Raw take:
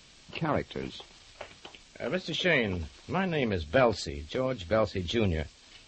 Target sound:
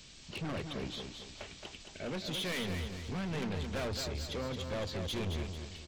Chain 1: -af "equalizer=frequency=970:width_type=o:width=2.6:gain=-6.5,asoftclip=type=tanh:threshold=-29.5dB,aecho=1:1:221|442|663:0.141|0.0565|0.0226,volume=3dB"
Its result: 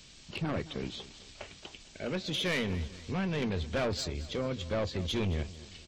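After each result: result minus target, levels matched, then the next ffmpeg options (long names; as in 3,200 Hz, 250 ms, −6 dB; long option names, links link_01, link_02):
echo-to-direct −10.5 dB; soft clipping: distortion −5 dB
-af "equalizer=frequency=970:width_type=o:width=2.6:gain=-6.5,asoftclip=type=tanh:threshold=-29.5dB,aecho=1:1:221|442|663|884|1105:0.473|0.189|0.0757|0.0303|0.0121,volume=3dB"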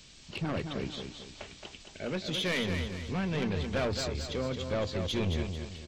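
soft clipping: distortion −5 dB
-af "equalizer=frequency=970:width_type=o:width=2.6:gain=-6.5,asoftclip=type=tanh:threshold=-37.5dB,aecho=1:1:221|442|663|884|1105:0.473|0.189|0.0757|0.0303|0.0121,volume=3dB"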